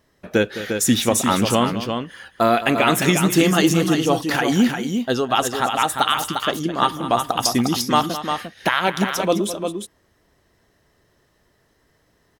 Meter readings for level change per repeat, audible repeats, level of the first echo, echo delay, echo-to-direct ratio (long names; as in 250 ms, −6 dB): repeats not evenly spaced, 2, −13.0 dB, 210 ms, −5.5 dB